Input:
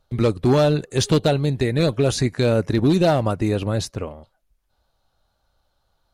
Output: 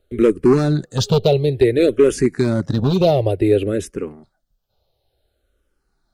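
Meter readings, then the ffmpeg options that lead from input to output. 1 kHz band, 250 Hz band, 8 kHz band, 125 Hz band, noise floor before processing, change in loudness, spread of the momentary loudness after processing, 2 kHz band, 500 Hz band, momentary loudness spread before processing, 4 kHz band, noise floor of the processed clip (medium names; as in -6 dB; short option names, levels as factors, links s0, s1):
-0.5 dB, +3.0 dB, -1.5 dB, +0.5 dB, -70 dBFS, +3.0 dB, 8 LU, -0.5 dB, +4.5 dB, 8 LU, -0.5 dB, -71 dBFS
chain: -filter_complex "[0:a]equalizer=f=400:t=o:w=0.67:g=9,equalizer=f=1000:t=o:w=0.67:g=-10,equalizer=f=6300:t=o:w=0.67:g=-4,volume=2.66,asoftclip=hard,volume=0.376,asplit=2[s0][s1];[s1]afreqshift=-0.56[s2];[s0][s2]amix=inputs=2:normalize=1,volume=1.5"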